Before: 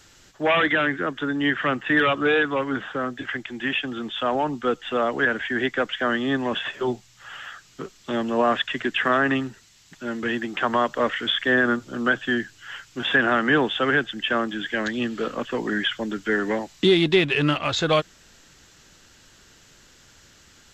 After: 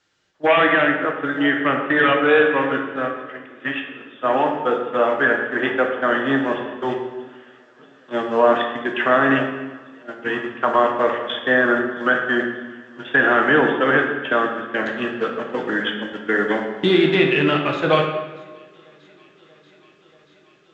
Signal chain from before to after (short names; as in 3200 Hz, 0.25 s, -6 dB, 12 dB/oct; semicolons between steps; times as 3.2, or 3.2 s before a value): echo with dull and thin repeats by turns 0.317 s, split 830 Hz, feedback 86%, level -14 dB; in parallel at -2.5 dB: compressor 5:1, threshold -30 dBFS, peak gain reduction 15 dB; on the sum: dynamic EQ 4500 Hz, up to -6 dB, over -39 dBFS, Q 1.3; gate -22 dBFS, range -20 dB; HPF 270 Hz 6 dB/oct; air absorption 110 m; reverb RT60 1.3 s, pre-delay 6 ms, DRR 1.5 dB; gain +2.5 dB